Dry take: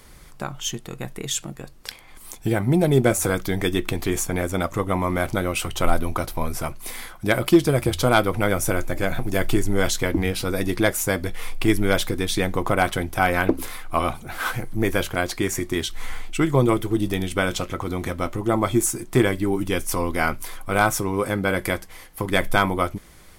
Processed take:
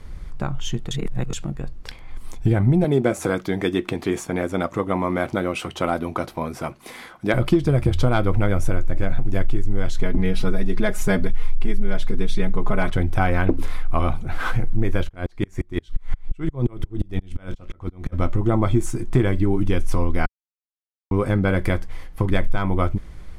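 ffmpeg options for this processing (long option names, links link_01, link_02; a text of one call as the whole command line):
ffmpeg -i in.wav -filter_complex "[0:a]asettb=1/sr,asplit=3[link_01][link_02][link_03];[link_01]atrim=end=2.844[link_04];[link_02]atrim=start=2.84:end=7.34,asetpts=PTS-STARTPTS,afade=type=in:duration=0.004:curve=qsin,afade=type=out:start_time=4.496:duration=0.004:curve=qsin,highpass=230[link_05];[link_03]atrim=start=7.336[link_06];[link_04][link_05]acrossfade=duration=0.004:curve1=hsin:curve2=qsin[link_07];[link_07][link_06]acrossfade=duration=0.004:curve1=qsin:curve2=hsin,asettb=1/sr,asplit=3[link_08][link_09][link_10];[link_08]atrim=end=9.994[link_11];[link_09]atrim=start=9.99:end=12.9,asetpts=PTS-STARTPTS,afade=type=in:duration=0.004:curve=qsin,afade=type=out:start_time=2.906:duration=0.004:curve=qsin,aecho=1:1:4.8:0.99,atrim=end_sample=128331[link_12];[link_10]atrim=start=12.896[link_13];[link_11][link_12]acrossfade=duration=0.004:curve1=hsin:curve2=qsin[link_14];[link_14][link_13]acrossfade=duration=0.004:curve1=qsin:curve2=hsin,asplit=3[link_15][link_16][link_17];[link_15]afade=type=out:start_time=15.03:duration=0.02[link_18];[link_16]aeval=exprs='val(0)*pow(10,-39*if(lt(mod(-5.7*n/s,1),2*abs(-5.7)/1000),1-mod(-5.7*n/s,1)/(2*abs(-5.7)/1000),(mod(-5.7*n/s,1)-2*abs(-5.7)/1000)/(1-2*abs(-5.7)/1000))/20)':channel_layout=same,afade=type=in:start_time=15.03:duration=0.02,afade=type=out:start_time=18.12:duration=0.02[link_19];[link_17]afade=type=in:start_time=18.12:duration=0.02[link_20];[link_18][link_19][link_20]amix=inputs=3:normalize=0,asplit=5[link_21][link_22][link_23][link_24][link_25];[link_21]atrim=end=0.912[link_26];[link_22]atrim=start=0.908:end=1.332,asetpts=PTS-STARTPTS,areverse[link_27];[link_23]atrim=start=1.328:end=20.26,asetpts=PTS-STARTPTS,afade=type=out:start_time=18.928:duration=0.004:curve=hsin[link_28];[link_24]atrim=start=20.26:end=21.11,asetpts=PTS-STARTPTS,volume=0[link_29];[link_25]atrim=start=21.11,asetpts=PTS-STARTPTS,afade=type=in:duration=0.004:curve=hsin[link_30];[link_26][link_27]acrossfade=duration=0.004:curve1=hsin:curve2=hsin[link_31];[link_28][link_29][link_30]concat=n=3:v=0:a=1[link_32];[link_31][link_32]acrossfade=duration=0.004:curve1=hsin:curve2=hsin,aemphasis=mode=reproduction:type=bsi,acompressor=threshold=-13dB:ratio=6" out.wav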